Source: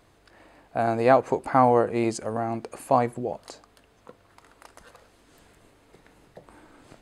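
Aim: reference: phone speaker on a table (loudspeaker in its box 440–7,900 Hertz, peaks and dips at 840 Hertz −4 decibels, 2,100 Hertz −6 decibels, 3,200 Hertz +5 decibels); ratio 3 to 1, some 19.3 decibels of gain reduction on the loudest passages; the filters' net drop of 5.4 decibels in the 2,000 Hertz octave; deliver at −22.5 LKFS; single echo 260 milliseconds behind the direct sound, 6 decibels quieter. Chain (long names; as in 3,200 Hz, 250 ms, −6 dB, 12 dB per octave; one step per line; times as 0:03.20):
parametric band 2,000 Hz −5.5 dB
downward compressor 3 to 1, threshold −41 dBFS
loudspeaker in its box 440–7,900 Hz, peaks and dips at 840 Hz −4 dB, 2,100 Hz −6 dB, 3,200 Hz +5 dB
single-tap delay 260 ms −6 dB
level +22.5 dB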